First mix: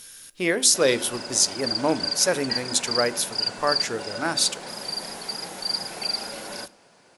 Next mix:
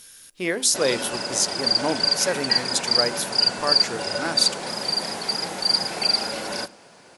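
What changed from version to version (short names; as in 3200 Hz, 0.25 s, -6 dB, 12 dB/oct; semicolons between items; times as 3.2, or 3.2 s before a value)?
speech: send -10.5 dB; background +6.5 dB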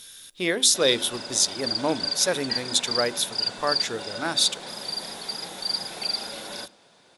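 background -8.5 dB; master: add bell 3600 Hz +12.5 dB 0.25 oct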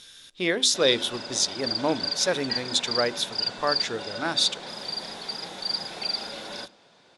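master: add LPF 6100 Hz 12 dB/oct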